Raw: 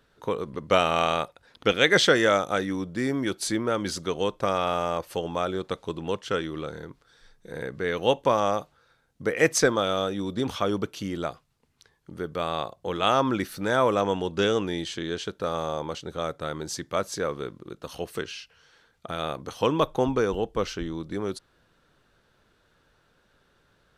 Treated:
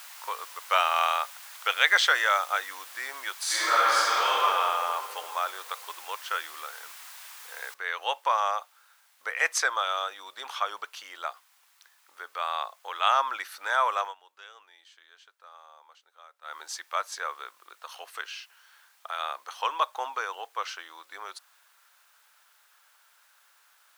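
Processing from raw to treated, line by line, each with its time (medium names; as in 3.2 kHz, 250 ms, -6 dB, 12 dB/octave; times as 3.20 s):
3.43–4.35 s: reverb throw, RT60 2.8 s, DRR -11 dB
7.74 s: noise floor step -43 dB -61 dB
14.00–16.57 s: dip -19 dB, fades 0.15 s
whole clip: high-pass 910 Hz 24 dB/octave; treble shelf 2.1 kHz -9 dB; trim +5 dB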